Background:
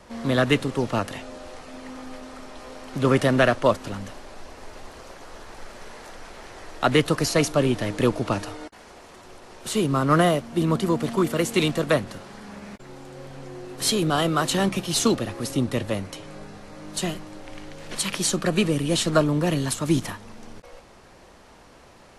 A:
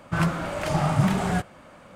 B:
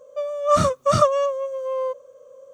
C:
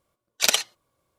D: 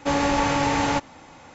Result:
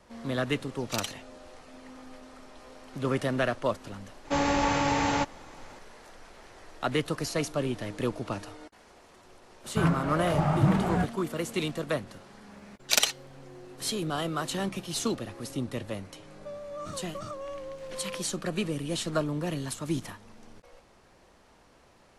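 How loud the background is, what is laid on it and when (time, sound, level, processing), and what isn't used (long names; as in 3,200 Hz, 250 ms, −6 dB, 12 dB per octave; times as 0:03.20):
background −9 dB
0:00.50: mix in C −14 dB
0:04.25: mix in D −4 dB
0:09.64: mix in A −2 dB + high-shelf EQ 3,100 Hz −12 dB
0:12.49: mix in C −3 dB
0:16.29: mix in B −13 dB + downward compressor 5 to 1, threshold −23 dBFS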